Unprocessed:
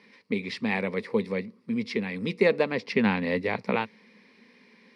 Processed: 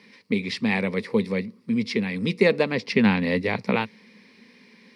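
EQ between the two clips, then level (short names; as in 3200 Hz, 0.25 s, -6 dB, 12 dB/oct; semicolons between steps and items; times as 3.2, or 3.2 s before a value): HPF 79 Hz; low shelf 230 Hz +10 dB; high shelf 2600 Hz +8.5 dB; 0.0 dB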